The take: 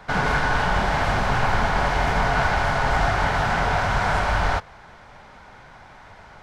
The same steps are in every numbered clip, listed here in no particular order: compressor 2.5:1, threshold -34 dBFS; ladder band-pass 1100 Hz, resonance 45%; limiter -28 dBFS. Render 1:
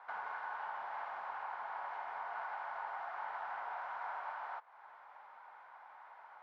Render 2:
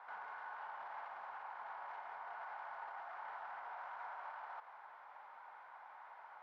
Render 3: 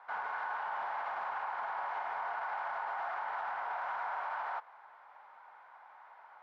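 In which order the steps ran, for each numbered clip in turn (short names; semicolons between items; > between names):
compressor > ladder band-pass > limiter; limiter > compressor > ladder band-pass; ladder band-pass > limiter > compressor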